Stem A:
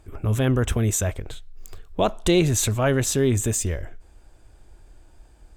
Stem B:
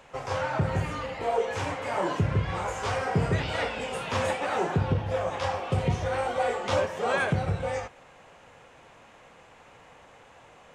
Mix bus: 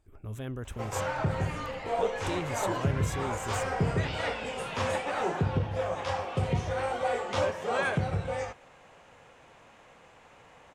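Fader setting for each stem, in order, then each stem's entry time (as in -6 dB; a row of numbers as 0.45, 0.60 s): -16.5, -2.5 dB; 0.00, 0.65 s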